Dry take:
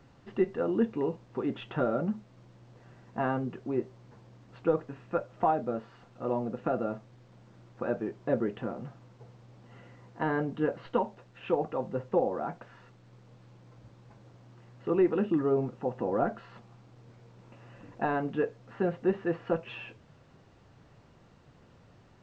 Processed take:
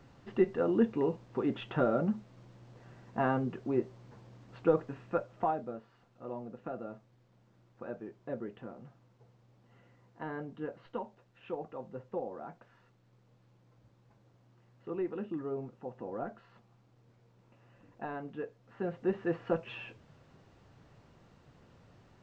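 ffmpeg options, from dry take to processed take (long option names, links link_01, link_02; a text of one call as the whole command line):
ffmpeg -i in.wav -af "volume=8.5dB,afade=type=out:start_time=4.94:duration=0.86:silence=0.298538,afade=type=in:start_time=18.62:duration=0.7:silence=0.375837" out.wav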